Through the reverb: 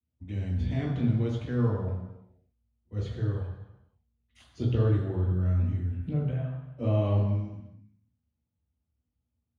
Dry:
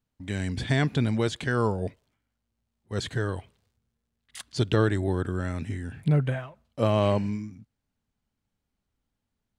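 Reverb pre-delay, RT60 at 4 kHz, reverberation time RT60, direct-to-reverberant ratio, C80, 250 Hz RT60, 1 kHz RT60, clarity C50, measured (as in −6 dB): 3 ms, 1.0 s, 1.0 s, −13.5 dB, 5.0 dB, 0.95 s, 1.0 s, 2.0 dB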